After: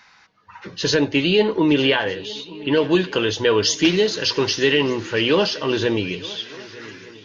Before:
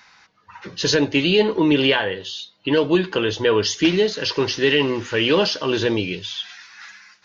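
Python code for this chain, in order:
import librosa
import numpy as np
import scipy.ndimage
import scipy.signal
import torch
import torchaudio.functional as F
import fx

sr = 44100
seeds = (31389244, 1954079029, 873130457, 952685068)

y = fx.high_shelf(x, sr, hz=5600.0, db=fx.steps((0.0, -4.0), (2.82, 8.5), (4.66, -3.5)))
y = fx.echo_swing(y, sr, ms=1210, ratio=3, feedback_pct=37, wet_db=-20.0)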